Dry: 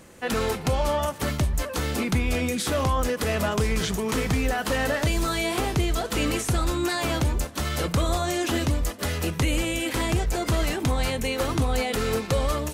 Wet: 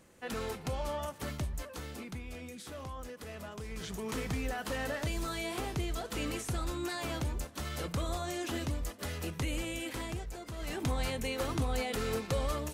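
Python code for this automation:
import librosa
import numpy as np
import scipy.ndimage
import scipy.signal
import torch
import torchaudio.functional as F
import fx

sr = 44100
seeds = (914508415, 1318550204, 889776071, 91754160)

y = fx.gain(x, sr, db=fx.line((1.46, -12.0), (2.23, -19.5), (3.62, -19.5), (4.04, -11.0), (9.83, -11.0), (10.54, -19.5), (10.77, -8.5)))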